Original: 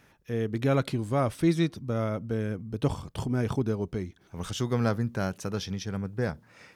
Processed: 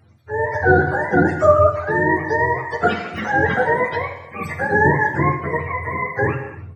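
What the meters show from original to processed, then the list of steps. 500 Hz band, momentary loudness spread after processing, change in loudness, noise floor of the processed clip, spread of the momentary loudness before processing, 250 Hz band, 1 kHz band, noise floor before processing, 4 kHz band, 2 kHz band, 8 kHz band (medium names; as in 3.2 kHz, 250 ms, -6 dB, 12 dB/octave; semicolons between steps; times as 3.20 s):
+12.5 dB, 9 LU, +11.0 dB, -39 dBFS, 9 LU, +5.0 dB, +18.5 dB, -61 dBFS, +0.5 dB, +22.0 dB, no reading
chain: spectrum inverted on a logarithmic axis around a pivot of 450 Hz; gated-style reverb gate 350 ms falling, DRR 3.5 dB; level rider gain up to 6.5 dB; trim +5 dB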